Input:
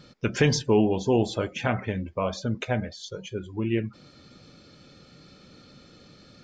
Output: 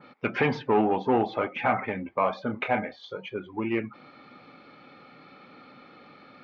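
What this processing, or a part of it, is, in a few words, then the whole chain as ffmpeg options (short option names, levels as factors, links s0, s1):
overdrive pedal into a guitar cabinet: -filter_complex "[0:a]asettb=1/sr,asplit=3[s0][s1][s2];[s0]atrim=end=2.444[s3];[s1]atrim=start=2.44:end=3.15,asetpts=PTS-STARTPTS,afade=t=in:d=0.004:c=qsin,afade=t=out:st=0.706:d=0.004:c=qsin,asplit=2[s4][s5];[s5]adelay=29,volume=0.422[s6];[s4][s6]amix=inputs=2:normalize=0,atrim=end_sample=31311[s7];[s2]atrim=start=3.146[s8];[s3][s7]acrossfade=d=0.004:c1=hsin:c2=qsin[s9];[s9][s8]acrossfade=d=0.004:c1=qsin:c2=hsin,asplit=2[s10][s11];[s11]highpass=f=720:p=1,volume=6.31,asoftclip=type=tanh:threshold=0.355[s12];[s10][s12]amix=inputs=2:normalize=0,lowpass=f=1300:p=1,volume=0.501,highpass=78,equalizer=f=81:t=q:w=4:g=-8,equalizer=f=260:t=q:w=4:g=6,equalizer=f=820:t=q:w=4:g=10,equalizer=f=1200:t=q:w=4:g=8,equalizer=f=2200:t=q:w=4:g=10,lowpass=f=4100:w=0.5412,lowpass=f=4100:w=1.3066,adynamicequalizer=threshold=0.0178:dfrequency=2500:dqfactor=0.7:tfrequency=2500:tqfactor=0.7:attack=5:release=100:ratio=0.375:range=2:mode=cutabove:tftype=highshelf,volume=0.531"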